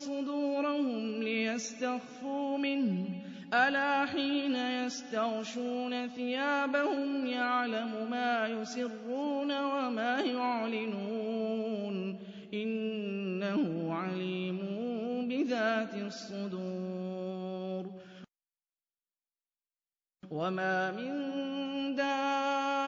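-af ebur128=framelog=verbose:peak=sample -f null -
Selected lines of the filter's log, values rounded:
Integrated loudness:
  I:         -33.5 LUFS
  Threshold: -43.6 LUFS
Loudness range:
  LRA:         8.1 LU
  Threshold: -54.1 LUFS
  LRA low:   -39.9 LUFS
  LRA high:  -31.8 LUFS
Sample peak:
  Peak:      -15.0 dBFS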